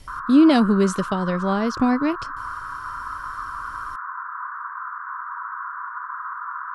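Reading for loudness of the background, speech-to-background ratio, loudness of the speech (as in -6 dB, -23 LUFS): -31.5 LUFS, 12.0 dB, -19.5 LUFS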